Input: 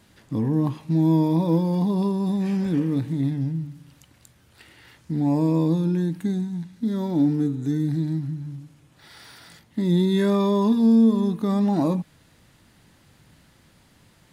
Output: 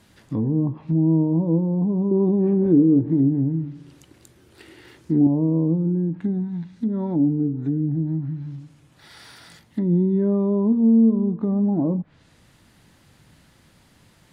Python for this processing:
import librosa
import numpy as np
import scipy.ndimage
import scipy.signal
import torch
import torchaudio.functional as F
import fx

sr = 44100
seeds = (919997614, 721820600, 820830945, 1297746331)

y = fx.env_lowpass_down(x, sr, base_hz=510.0, full_db=-19.5)
y = fx.peak_eq(y, sr, hz=360.0, db=13.5, octaves=0.73, at=(2.11, 5.27))
y = y * librosa.db_to_amplitude(1.0)